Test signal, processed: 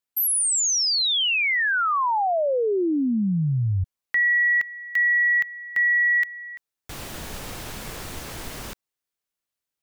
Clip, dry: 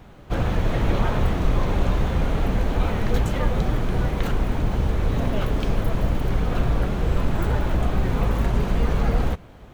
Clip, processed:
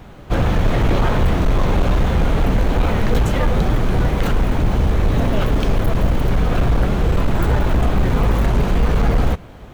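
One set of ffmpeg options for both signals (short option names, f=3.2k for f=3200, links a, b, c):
-af "volume=16.5dB,asoftclip=hard,volume=-16.5dB,volume=6.5dB"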